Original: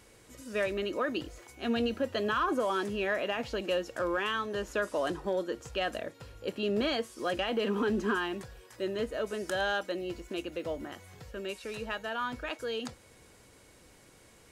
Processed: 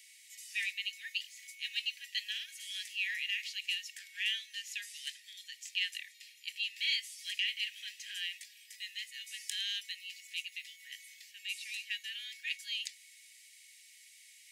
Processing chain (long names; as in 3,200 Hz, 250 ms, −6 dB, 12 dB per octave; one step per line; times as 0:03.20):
Butterworth high-pass 1,900 Hz 96 dB per octave
level +4.5 dB